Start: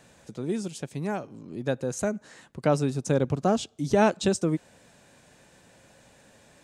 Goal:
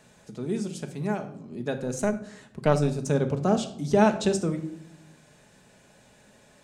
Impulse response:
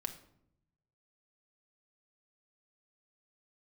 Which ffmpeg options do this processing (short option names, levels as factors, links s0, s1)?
-filter_complex "[1:a]atrim=start_sample=2205[s0];[0:a][s0]afir=irnorm=-1:irlink=0,asettb=1/sr,asplit=3[s1][s2][s3];[s1]atrim=end=1.774[s4];[s2]atrim=start=1.77:end=3.1,asetpts=PTS-STARTPTS,afade=t=in:d=0.004:c=qsin,afade=t=out:st=1.326:d=0.004:c=qsin,aeval=exprs='0.299*(cos(1*acos(clip(val(0)/0.299,-1,1)))-cos(1*PI/2))+0.106*(cos(2*acos(clip(val(0)/0.299,-1,1)))-cos(2*PI/2))':c=same[s5];[s3]atrim=start=3.096[s6];[s4][s5]acrossfade=d=0.004:c1=hsin:c2=qsin[s7];[s7][s6]acrossfade=d=0.004:c1=qsin:c2=hsin"